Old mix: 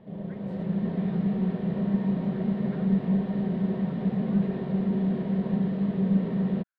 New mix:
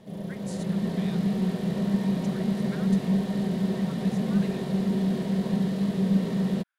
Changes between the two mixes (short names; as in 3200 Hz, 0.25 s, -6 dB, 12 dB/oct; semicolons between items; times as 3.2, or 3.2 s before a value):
speech +5.5 dB; master: remove air absorption 470 m